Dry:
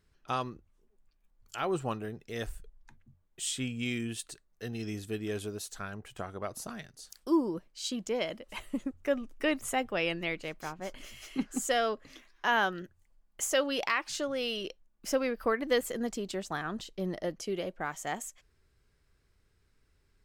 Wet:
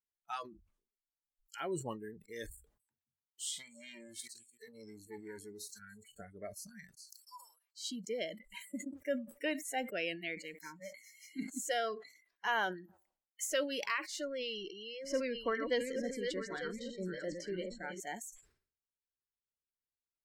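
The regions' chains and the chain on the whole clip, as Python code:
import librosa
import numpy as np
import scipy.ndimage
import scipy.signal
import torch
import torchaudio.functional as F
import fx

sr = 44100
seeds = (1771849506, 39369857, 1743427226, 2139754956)

y = fx.chain(x, sr, fx.highpass(hz=85.0, slope=12),
    fx.echo_feedback(ms=295, feedback_pct=35, wet_db=-18.5),
    fx.transformer_sat(knee_hz=1500.0), at=(2.5, 6.06))
y = fx.chain(y, sr, fx.bessel_highpass(hz=1300.0, order=8),
    fx.comb(ms=5.8, depth=0.36), at=(7.14, 7.84))
y = fx.chain(y, sr, fx.highpass(hz=180.0, slope=6),
    fx.echo_banded(ms=92, feedback_pct=42, hz=700.0, wet_db=-24.0), at=(8.55, 13.49))
y = fx.chain(y, sr, fx.reverse_delay(ms=439, wet_db=-5.5),
    fx.lowpass(hz=6500.0, slope=12),
    fx.echo_single(ms=898, db=-10.5), at=(14.25, 18.0))
y = fx.noise_reduce_blind(y, sr, reduce_db=29)
y = fx.low_shelf(y, sr, hz=120.0, db=-8.0)
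y = fx.sustainer(y, sr, db_per_s=120.0)
y = y * librosa.db_to_amplitude(-5.5)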